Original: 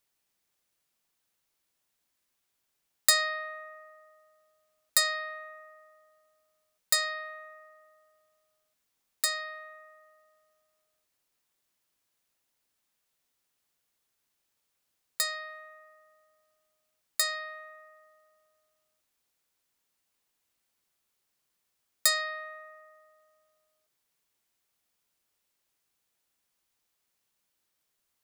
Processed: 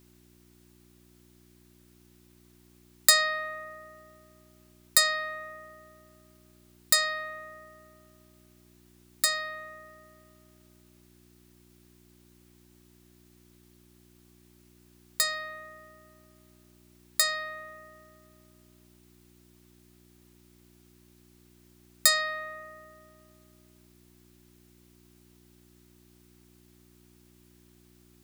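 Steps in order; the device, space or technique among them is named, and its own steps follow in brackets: video cassette with head-switching buzz (buzz 60 Hz, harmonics 6, -63 dBFS -1 dB/oct; white noise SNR 30 dB); gain +3 dB

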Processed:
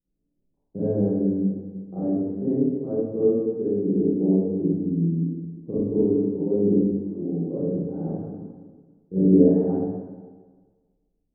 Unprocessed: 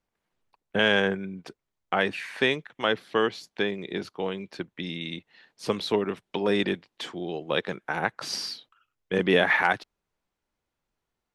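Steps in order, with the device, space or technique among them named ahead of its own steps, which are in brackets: next room (LPF 380 Hz 24 dB/oct; reverb RT60 0.55 s, pre-delay 30 ms, DRR -9.5 dB); 3.82–4.81 bell 390 Hz +6 dB 2.8 oct; plate-style reverb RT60 1.5 s, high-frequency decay 0.95×, DRR -1 dB; gain -4 dB

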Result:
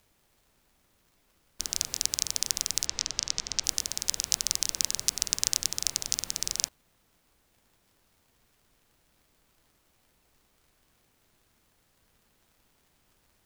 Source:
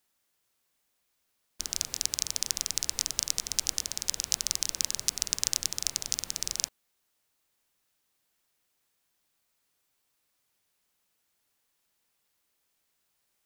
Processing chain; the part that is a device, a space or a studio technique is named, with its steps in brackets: 2.86–3.64 LPF 6400 Hz 24 dB/oct; vinyl LP (crackle; pink noise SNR 34 dB); gain +1.5 dB

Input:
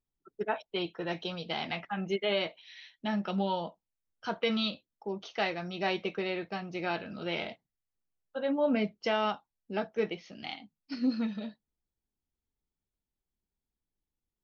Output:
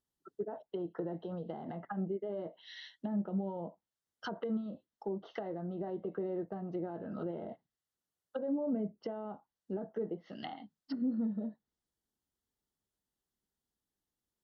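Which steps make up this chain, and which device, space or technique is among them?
PA system with an anti-feedback notch (HPF 140 Hz 6 dB/oct; Butterworth band-stop 2400 Hz, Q 3.5; limiter -28.5 dBFS, peak gain reduction 11 dB); treble ducked by the level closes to 520 Hz, closed at -36 dBFS; gain +2.5 dB

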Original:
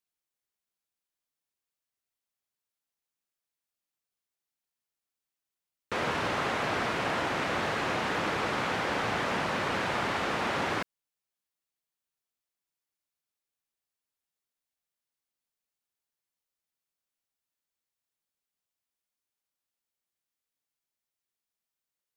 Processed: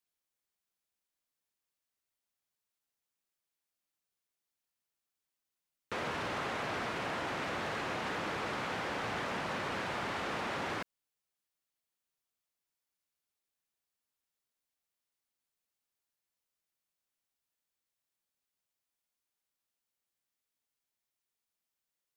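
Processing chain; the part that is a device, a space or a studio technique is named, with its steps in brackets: clipper into limiter (hard clip -22 dBFS, distortion -27 dB; limiter -29 dBFS, peak gain reduction 7 dB)

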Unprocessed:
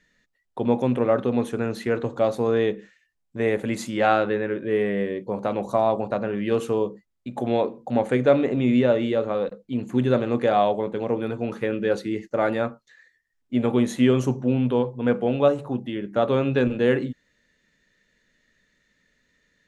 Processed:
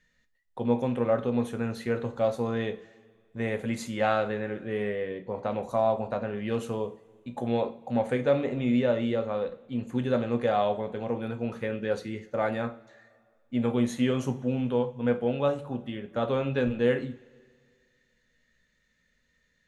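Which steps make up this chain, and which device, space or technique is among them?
low shelf boost with a cut just above (low shelf 71 Hz +7 dB; bell 310 Hz -5 dB 0.74 oct); 4.95–5.52 LPF 6200 Hz 12 dB/oct; two-slope reverb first 0.31 s, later 2.1 s, from -22 dB, DRR 7 dB; gain -5.5 dB

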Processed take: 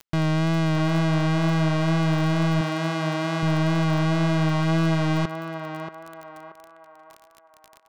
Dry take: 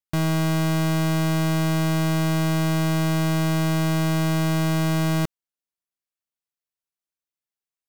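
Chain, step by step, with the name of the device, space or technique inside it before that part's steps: 2.61–3.43 HPF 290 Hz 6 dB/oct; lo-fi chain (LPF 4800 Hz 12 dB/oct; wow and flutter 39 cents; crackle 26/s -31 dBFS); narrowing echo 0.631 s, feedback 49%, band-pass 910 Hz, level -4 dB

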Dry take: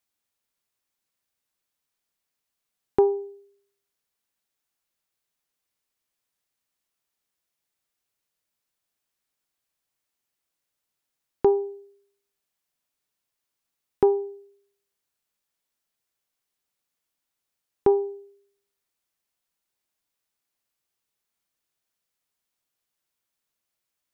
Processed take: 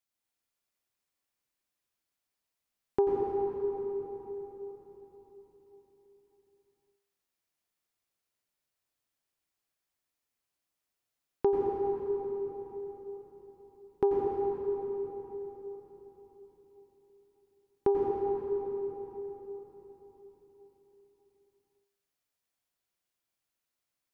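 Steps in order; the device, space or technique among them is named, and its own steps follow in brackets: cathedral (reverb RT60 4.4 s, pre-delay 84 ms, DRR -3 dB); gain -7.5 dB

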